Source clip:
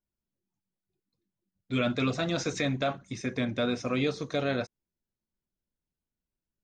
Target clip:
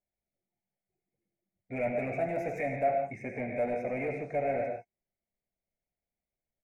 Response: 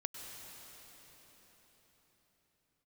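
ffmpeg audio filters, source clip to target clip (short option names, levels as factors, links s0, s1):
-filter_complex "[1:a]atrim=start_sample=2205,afade=t=out:st=0.32:d=0.01,atrim=end_sample=14553,asetrate=66150,aresample=44100[s0];[0:a][s0]afir=irnorm=-1:irlink=0,asoftclip=type=tanh:threshold=0.02,firequalizer=gain_entry='entry(310,0);entry(700,15);entry(1100,-13);entry(2200,12);entry(3200,-29);entry(9500,-4)':delay=0.05:min_phase=1,volume=1.12"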